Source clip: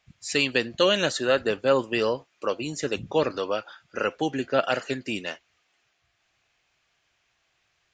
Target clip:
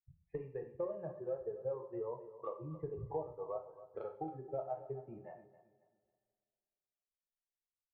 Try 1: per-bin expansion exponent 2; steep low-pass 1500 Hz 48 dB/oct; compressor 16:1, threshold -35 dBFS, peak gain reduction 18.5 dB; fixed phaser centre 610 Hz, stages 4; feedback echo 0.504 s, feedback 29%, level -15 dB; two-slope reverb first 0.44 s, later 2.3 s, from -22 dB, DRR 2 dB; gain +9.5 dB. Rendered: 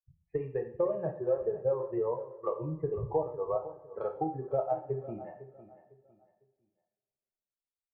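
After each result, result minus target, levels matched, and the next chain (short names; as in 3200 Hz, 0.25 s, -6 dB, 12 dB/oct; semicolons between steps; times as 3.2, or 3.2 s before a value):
echo 0.233 s late; compressor: peak gain reduction -10 dB
per-bin expansion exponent 2; steep low-pass 1500 Hz 48 dB/oct; compressor 16:1, threshold -35 dBFS, peak gain reduction 18.5 dB; fixed phaser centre 610 Hz, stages 4; feedback echo 0.271 s, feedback 29%, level -15 dB; two-slope reverb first 0.44 s, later 2.3 s, from -22 dB, DRR 2 dB; gain +9.5 dB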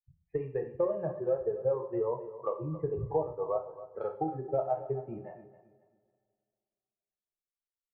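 compressor: peak gain reduction -10 dB
per-bin expansion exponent 2; steep low-pass 1500 Hz 48 dB/oct; compressor 16:1, threshold -45.5 dBFS, peak gain reduction 28 dB; fixed phaser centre 610 Hz, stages 4; feedback echo 0.271 s, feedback 29%, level -15 dB; two-slope reverb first 0.44 s, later 2.3 s, from -22 dB, DRR 2 dB; gain +9.5 dB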